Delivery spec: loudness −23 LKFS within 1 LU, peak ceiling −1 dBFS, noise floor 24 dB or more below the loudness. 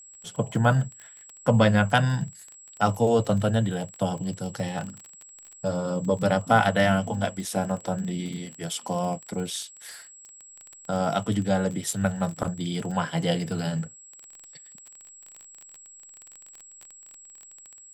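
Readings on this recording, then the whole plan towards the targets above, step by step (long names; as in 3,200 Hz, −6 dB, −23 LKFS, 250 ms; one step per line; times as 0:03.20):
crackle rate 23 per second; interfering tone 7,700 Hz; level of the tone −46 dBFS; integrated loudness −26.0 LKFS; sample peak −5.5 dBFS; target loudness −23.0 LKFS
→ click removal
notch filter 7,700 Hz, Q 30
level +3 dB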